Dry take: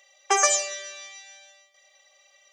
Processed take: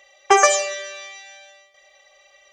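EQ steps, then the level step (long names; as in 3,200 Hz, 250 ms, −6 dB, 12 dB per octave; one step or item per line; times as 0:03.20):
bass and treble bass +8 dB, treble −8 dB
low-shelf EQ 440 Hz +5.5 dB
+7.0 dB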